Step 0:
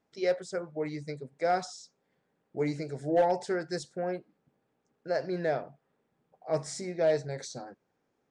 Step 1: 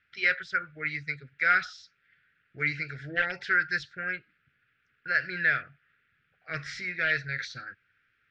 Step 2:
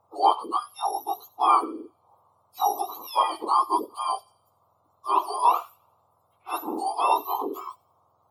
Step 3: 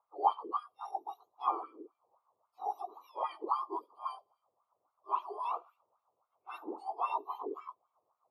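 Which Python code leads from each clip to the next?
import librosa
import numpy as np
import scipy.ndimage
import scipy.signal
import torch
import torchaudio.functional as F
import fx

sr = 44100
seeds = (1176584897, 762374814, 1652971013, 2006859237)

y1 = fx.curve_eq(x, sr, hz=(100.0, 210.0, 460.0, 960.0, 1400.0, 2600.0, 5400.0, 8400.0), db=(0, -16, -19, -27, 11, 10, -8, -29))
y1 = y1 * librosa.db_to_amplitude(6.5)
y2 = fx.octave_mirror(y1, sr, pivot_hz=1300.0)
y2 = fx.echo_wet_highpass(y2, sr, ms=86, feedback_pct=44, hz=2400.0, wet_db=-20.5)
y2 = y2 * librosa.db_to_amplitude(6.5)
y3 = fx.wah_lfo(y2, sr, hz=3.7, low_hz=370.0, high_hz=2200.0, q=2.8)
y3 = y3 * librosa.db_to_amplitude(-5.0)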